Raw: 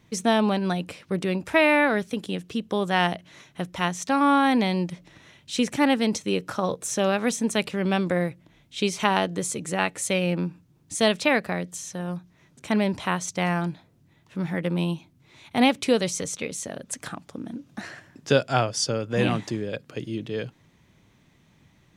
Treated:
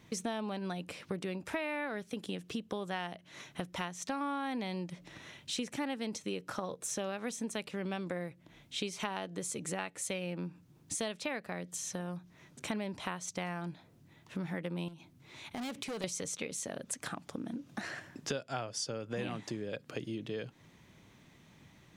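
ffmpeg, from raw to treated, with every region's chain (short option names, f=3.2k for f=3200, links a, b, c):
-filter_complex "[0:a]asettb=1/sr,asplit=3[a][b][c];[a]atrim=end=14.884[d];[b]atrim=start=14.88:end=16.04,asetpts=PTS-STARTPTS,afade=t=in:d=0.004:c=qsin,afade=t=out:st=1.156:d=0.004:c=qsin,asoftclip=type=hard:threshold=-24dB,acompressor=threshold=-37dB:ratio=12:attack=3.2:release=140:knee=1:detection=peak[e];[c]atrim=start=16.036[f];[d][e]acrossfade=d=0.004:c1=hsin:c2=qsin[g];[g][f]acrossfade=d=0.004:c1=qsin:c2=hsin,lowshelf=f=120:g=-5.5,acompressor=threshold=-37dB:ratio=5,volume=1dB"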